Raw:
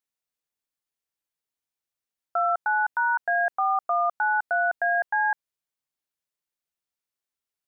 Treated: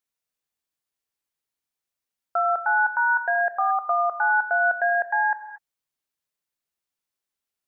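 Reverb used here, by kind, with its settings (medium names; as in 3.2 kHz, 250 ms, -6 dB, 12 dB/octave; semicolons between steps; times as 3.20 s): gated-style reverb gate 260 ms flat, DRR 8.5 dB; trim +1.5 dB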